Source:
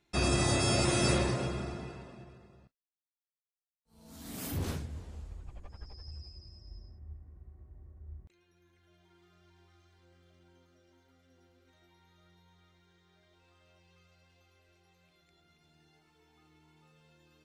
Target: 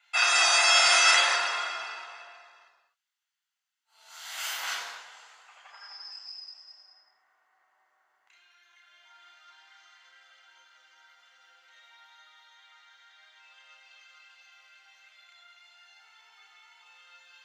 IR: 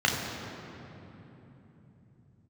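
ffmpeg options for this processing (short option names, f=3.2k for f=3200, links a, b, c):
-filter_complex "[0:a]highpass=f=1k:w=0.5412,highpass=f=1k:w=1.3066[a];[1:a]atrim=start_sample=2205,afade=t=out:st=0.32:d=0.01,atrim=end_sample=14553[b];[a][b]afir=irnorm=-1:irlink=0,volume=1dB"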